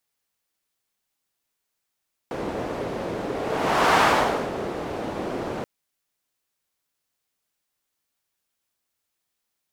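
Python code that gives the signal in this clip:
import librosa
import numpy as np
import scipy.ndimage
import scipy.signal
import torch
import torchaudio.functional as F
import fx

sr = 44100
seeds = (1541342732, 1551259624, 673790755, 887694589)

y = fx.whoosh(sr, seeds[0], length_s=3.33, peak_s=1.69, rise_s=0.72, fall_s=0.59, ends_hz=450.0, peak_hz=1000.0, q=1.1, swell_db=12.0)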